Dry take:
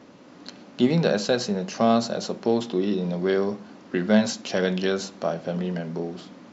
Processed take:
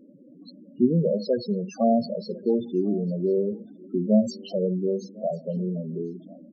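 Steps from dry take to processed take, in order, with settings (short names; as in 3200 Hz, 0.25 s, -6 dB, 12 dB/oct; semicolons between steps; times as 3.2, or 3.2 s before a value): loudest bins only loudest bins 8; echo 1.051 s -23.5 dB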